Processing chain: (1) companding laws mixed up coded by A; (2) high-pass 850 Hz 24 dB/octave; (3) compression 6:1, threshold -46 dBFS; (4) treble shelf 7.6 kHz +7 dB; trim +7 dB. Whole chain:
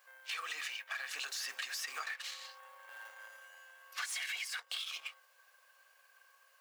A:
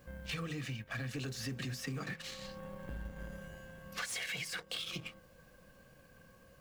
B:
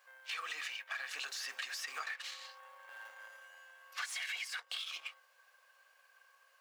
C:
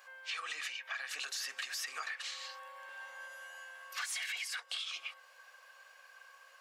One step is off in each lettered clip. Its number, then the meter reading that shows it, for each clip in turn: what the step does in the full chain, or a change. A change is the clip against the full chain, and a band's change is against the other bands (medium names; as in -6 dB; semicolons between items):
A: 2, 500 Hz band +15.5 dB; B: 4, 8 kHz band -3.0 dB; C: 1, distortion -19 dB